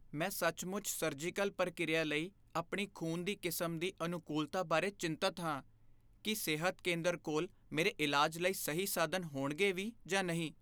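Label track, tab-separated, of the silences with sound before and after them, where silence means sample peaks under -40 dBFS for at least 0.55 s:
5.600000	6.250000	silence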